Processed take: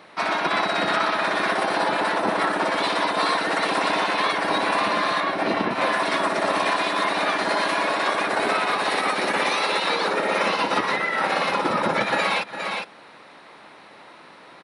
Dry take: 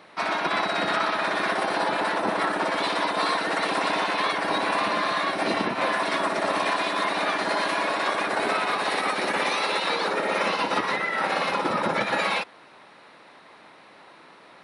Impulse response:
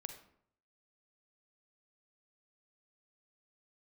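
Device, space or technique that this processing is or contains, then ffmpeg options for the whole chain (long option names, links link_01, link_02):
ducked delay: -filter_complex "[0:a]asettb=1/sr,asplit=3[link_01][link_02][link_03];[link_01]atrim=end=5.204[link_04];[link_02]atrim=start=5.2:end=5.71,asetpts=PTS-STARTPTS,afade=type=in:duration=0.004:curve=qsin,afade=type=out:start_time=0.506:duration=0.004:curve=qsin,highshelf=frequency=4700:gain=-11[link_05];[link_03]atrim=start=5.706[link_06];[link_04][link_05]acrossfade=duration=0.004:curve1=hsin:curve2=qsin[link_07];[link_07][link_06]acrossfade=duration=0.004:curve1=qsin:curve2=hsin,asplit=3[link_08][link_09][link_10];[link_09]adelay=407,volume=-5dB[link_11];[link_10]apad=whole_len=663216[link_12];[link_11][link_12]sidechaincompress=threshold=-40dB:ratio=8:attack=9:release=205[link_13];[link_08][link_13]amix=inputs=2:normalize=0,volume=2.5dB"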